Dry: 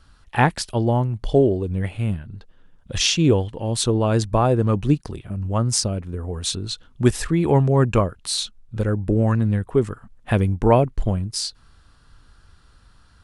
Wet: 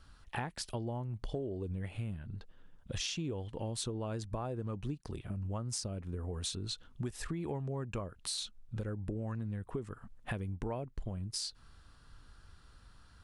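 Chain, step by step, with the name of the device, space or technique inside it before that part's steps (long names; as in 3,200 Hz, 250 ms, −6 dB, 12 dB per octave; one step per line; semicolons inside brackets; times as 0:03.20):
serial compression, peaks first (downward compressor 5 to 1, threshold −24 dBFS, peak gain reduction 13 dB; downward compressor 2 to 1, threshold −33 dBFS, peak gain reduction 7 dB)
level −5.5 dB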